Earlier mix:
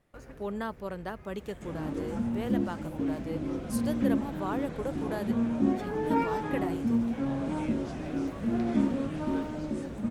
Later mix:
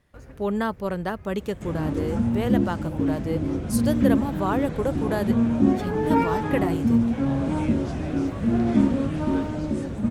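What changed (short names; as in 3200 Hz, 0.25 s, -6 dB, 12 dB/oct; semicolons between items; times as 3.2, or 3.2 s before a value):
speech +8.5 dB; second sound +5.5 dB; master: add bell 82 Hz +9.5 dB 1.4 oct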